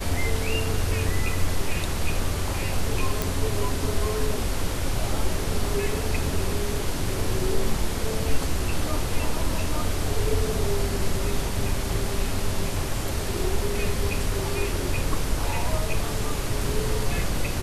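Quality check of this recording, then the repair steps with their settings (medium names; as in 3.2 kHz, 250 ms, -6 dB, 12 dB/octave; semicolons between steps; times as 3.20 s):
3.22 s: pop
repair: de-click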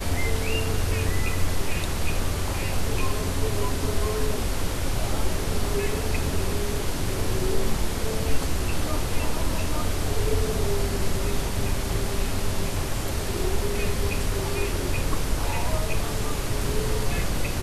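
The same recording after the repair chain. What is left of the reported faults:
nothing left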